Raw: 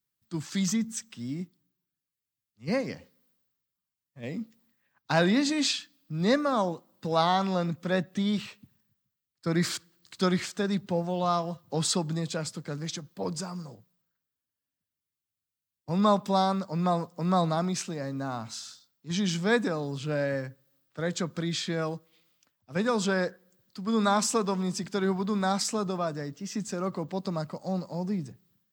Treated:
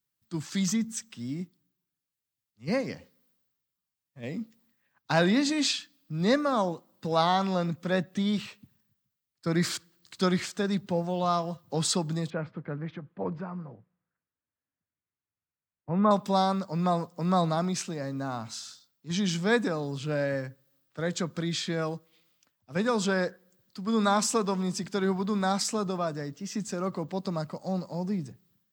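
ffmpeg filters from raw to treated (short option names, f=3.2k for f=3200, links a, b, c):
-filter_complex "[0:a]asettb=1/sr,asplit=3[a][b][c];[a]atrim=end=12.304[d];[b]atrim=start=12.3:end=16.11,asetpts=PTS-STARTPTS,afade=t=in:d=0.004:c=qsin,afade=t=out:st=3.806:d=0.004:c=qsin,lowpass=f=2.2k:w=0.5412,lowpass=f=2.2k:w=1.3066[e];[c]atrim=start=16.106[f];[d][e]acrossfade=d=0.004:c1=hsin:c2=qsin[g];[g][f]acrossfade=d=0.004:c1=qsin:c2=hsin"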